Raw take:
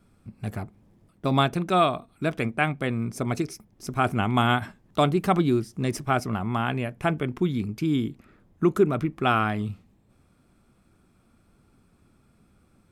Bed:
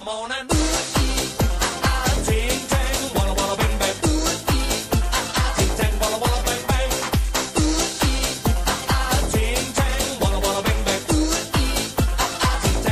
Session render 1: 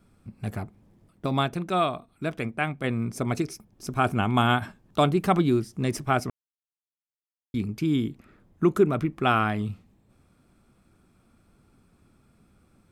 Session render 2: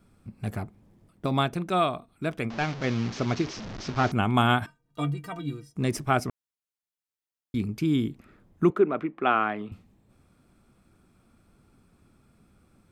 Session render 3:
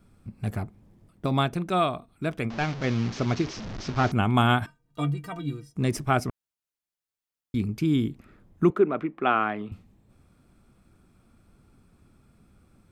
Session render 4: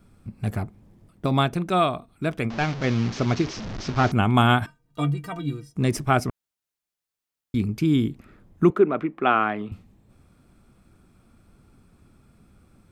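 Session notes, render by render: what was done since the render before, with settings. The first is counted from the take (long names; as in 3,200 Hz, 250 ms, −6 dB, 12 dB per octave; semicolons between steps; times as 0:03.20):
0:01.26–0:02.84: clip gain −3.5 dB; 0:03.51–0:05.11: notch filter 2,000 Hz; 0:06.30–0:07.54: silence
0:02.50–0:04.12: linear delta modulator 32 kbit/s, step −31.5 dBFS; 0:04.66–0:05.76: stiff-string resonator 140 Hz, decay 0.25 s, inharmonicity 0.03; 0:08.70–0:09.72: three-way crossover with the lows and the highs turned down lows −23 dB, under 230 Hz, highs −23 dB, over 3,100 Hz
low-shelf EQ 120 Hz +5 dB
level +3 dB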